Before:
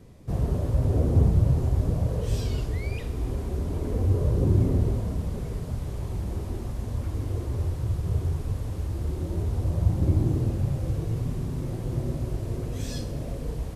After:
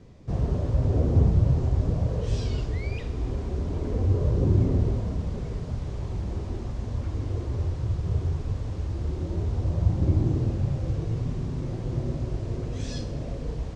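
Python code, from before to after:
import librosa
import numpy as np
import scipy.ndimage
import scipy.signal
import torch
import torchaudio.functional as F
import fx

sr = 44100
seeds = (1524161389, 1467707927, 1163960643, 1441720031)

y = scipy.signal.sosfilt(scipy.signal.butter(4, 6800.0, 'lowpass', fs=sr, output='sos'), x)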